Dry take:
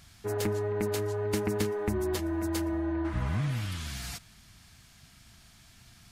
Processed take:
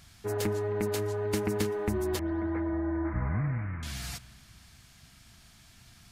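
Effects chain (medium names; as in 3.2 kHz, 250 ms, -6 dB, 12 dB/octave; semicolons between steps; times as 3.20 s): 2.19–3.83 s: steep low-pass 2.2 kHz 72 dB/octave; reverberation RT60 2.5 s, pre-delay 93 ms, DRR 18.5 dB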